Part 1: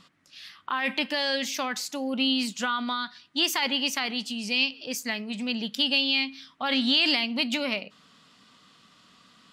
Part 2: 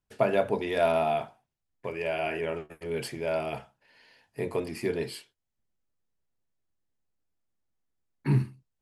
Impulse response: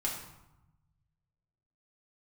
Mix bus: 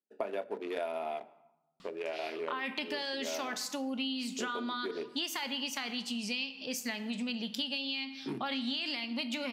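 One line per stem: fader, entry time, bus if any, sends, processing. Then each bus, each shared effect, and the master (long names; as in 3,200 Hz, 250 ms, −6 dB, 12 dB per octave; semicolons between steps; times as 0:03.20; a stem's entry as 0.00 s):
−3.0 dB, 1.80 s, send −10.5 dB, no processing
−2.0 dB, 0.00 s, send −20.5 dB, adaptive Wiener filter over 41 samples; high-pass filter 260 Hz 24 dB per octave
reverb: on, RT60 0.95 s, pre-delay 3 ms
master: downward compressor, threshold −33 dBFS, peak gain reduction 13.5 dB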